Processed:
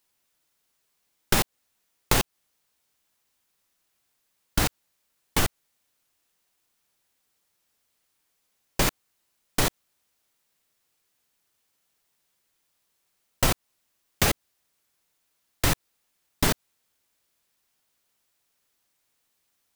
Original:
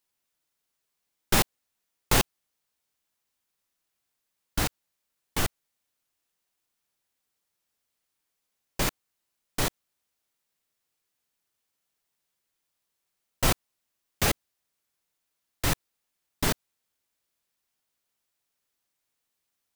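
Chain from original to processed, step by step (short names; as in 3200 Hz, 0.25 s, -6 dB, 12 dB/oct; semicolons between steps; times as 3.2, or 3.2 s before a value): compressor 6:1, threshold -25 dBFS, peak gain reduction 8.5 dB; gain +7 dB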